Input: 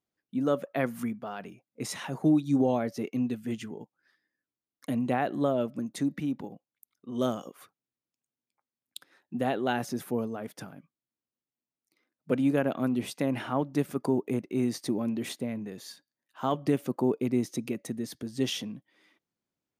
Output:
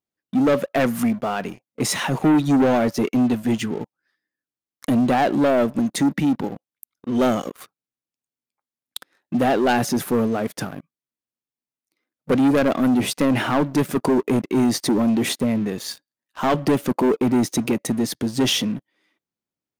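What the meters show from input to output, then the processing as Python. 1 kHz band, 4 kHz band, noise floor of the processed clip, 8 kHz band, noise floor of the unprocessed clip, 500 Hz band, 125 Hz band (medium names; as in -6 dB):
+11.0 dB, +13.0 dB, under -85 dBFS, +13.5 dB, under -85 dBFS, +9.0 dB, +8.5 dB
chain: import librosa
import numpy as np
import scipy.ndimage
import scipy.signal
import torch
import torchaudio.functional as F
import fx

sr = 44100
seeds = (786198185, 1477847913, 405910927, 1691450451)

y = fx.leveller(x, sr, passes=3)
y = y * librosa.db_to_amplitude(3.0)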